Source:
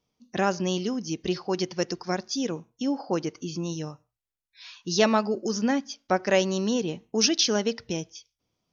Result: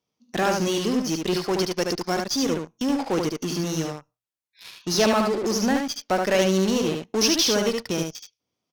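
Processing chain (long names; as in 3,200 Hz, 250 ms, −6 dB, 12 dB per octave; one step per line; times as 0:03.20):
high-pass filter 170 Hz 6 dB per octave
in parallel at −10.5 dB: fuzz pedal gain 37 dB, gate −40 dBFS
on the sum: single-tap delay 74 ms −4 dB
harmonic generator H 6 −28 dB, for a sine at −5 dBFS
level −3 dB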